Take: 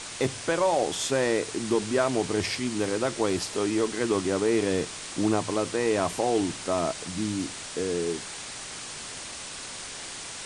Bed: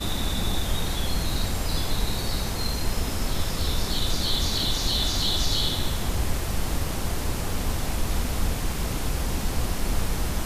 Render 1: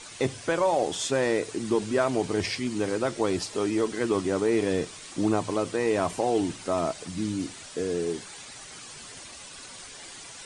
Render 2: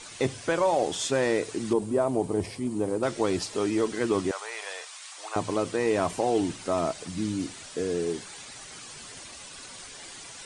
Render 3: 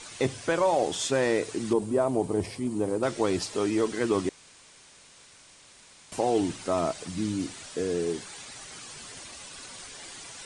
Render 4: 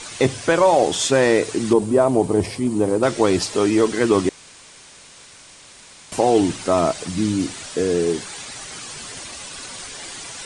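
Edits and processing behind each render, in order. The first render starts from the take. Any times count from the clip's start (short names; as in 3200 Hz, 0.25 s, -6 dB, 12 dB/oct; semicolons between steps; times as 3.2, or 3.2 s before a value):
denoiser 9 dB, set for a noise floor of -39 dBFS
1.73–3.03 band shelf 3000 Hz -12.5 dB 2.6 oct; 4.31–5.36 inverse Chebyshev high-pass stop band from 220 Hz, stop band 60 dB
4.29–6.12 room tone
gain +9 dB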